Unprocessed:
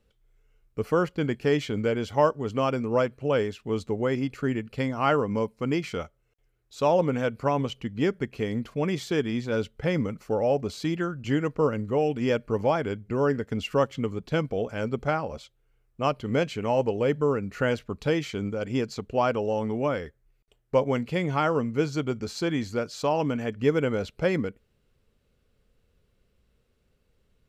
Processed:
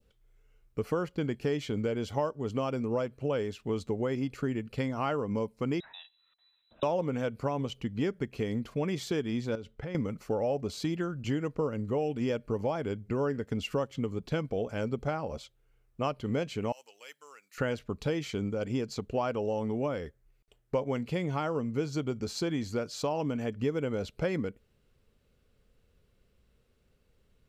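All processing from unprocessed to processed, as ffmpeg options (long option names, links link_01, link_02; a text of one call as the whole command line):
ffmpeg -i in.wav -filter_complex "[0:a]asettb=1/sr,asplit=3[link_01][link_02][link_03];[link_01]atrim=end=5.804[link_04];[link_02]atrim=start=5.8:end=6.83,asetpts=PTS-STARTPTS,afade=type=in:duration=0.004:curve=qsin,afade=type=out:start_time=1.026:duration=0.004:curve=qsin,highshelf=frequency=3000:gain=11.5,acompressor=threshold=-50dB:ratio=3:attack=3.2:release=140:knee=1:detection=peak,lowpass=frequency=3400:width_type=q:width=0.5098,lowpass=frequency=3400:width_type=q:width=0.6013,lowpass=frequency=3400:width_type=q:width=0.9,lowpass=frequency=3400:width_type=q:width=2.563,afreqshift=-4000[link_05];[link_03]atrim=start=6.826[link_06];[link_04][link_05]acrossfade=duration=0.004:curve1=hsin:curve2=qsin[link_07];[link_07][link_06]acrossfade=duration=0.004:curve1=qsin:curve2=hsin,asettb=1/sr,asplit=3[link_08][link_09][link_10];[link_08]atrim=end=9.554[link_11];[link_09]atrim=start=9.55:end=9.95,asetpts=PTS-STARTPTS,afade=type=in:duration=0.004:curve=qsin,afade=type=out:start_time=0.396:duration=0.004:curve=qsin,agate=range=-33dB:threshold=-59dB:ratio=3:release=100:detection=peak,highshelf=frequency=4600:gain=-7.5,acompressor=threshold=-35dB:ratio=5:attack=3.2:release=140:knee=1:detection=peak[link_12];[link_10]atrim=start=9.946[link_13];[link_11][link_12]acrossfade=duration=0.004:curve1=hsin:curve2=qsin[link_14];[link_14][link_13]acrossfade=duration=0.004:curve1=qsin:curve2=hsin,asettb=1/sr,asplit=3[link_15][link_16][link_17];[link_15]atrim=end=16.724[link_18];[link_16]atrim=start=16.72:end=17.58,asetpts=PTS-STARTPTS,afade=type=in:duration=0.004:curve=qsin,afade=type=out:start_time=0.856:duration=0.004:curve=qsin,highpass=frequency=1200:poles=1,aderivative[link_19];[link_17]atrim=start=17.576[link_20];[link_18][link_19]acrossfade=duration=0.004:curve1=hsin:curve2=qsin[link_21];[link_21][link_20]acrossfade=duration=0.004:curve1=qsin:curve2=hsin,acompressor=threshold=-28dB:ratio=3,adynamicequalizer=threshold=0.00398:dfrequency=1700:dqfactor=0.86:tfrequency=1700:tqfactor=0.86:attack=5:release=100:ratio=0.375:range=2.5:mode=cutabove:tftype=bell" out.wav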